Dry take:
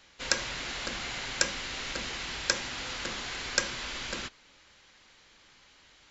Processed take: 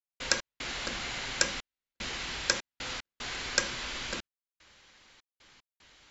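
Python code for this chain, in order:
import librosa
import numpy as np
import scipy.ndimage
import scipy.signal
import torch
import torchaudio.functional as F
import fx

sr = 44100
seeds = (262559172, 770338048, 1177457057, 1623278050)

y = fx.step_gate(x, sr, bpm=75, pattern='.x.xxxxx..xxx', floor_db=-60.0, edge_ms=4.5)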